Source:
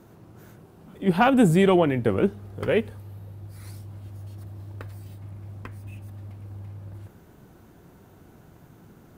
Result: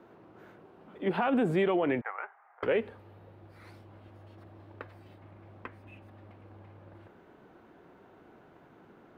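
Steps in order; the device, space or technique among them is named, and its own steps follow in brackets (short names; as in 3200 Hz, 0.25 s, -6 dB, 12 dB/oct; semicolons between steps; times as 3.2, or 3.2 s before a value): 2.01–2.63 Chebyshev band-pass 780–2100 Hz, order 3; DJ mixer with the lows and highs turned down (three-band isolator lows -16 dB, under 260 Hz, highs -23 dB, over 3400 Hz; limiter -19.5 dBFS, peak gain reduction 12 dB)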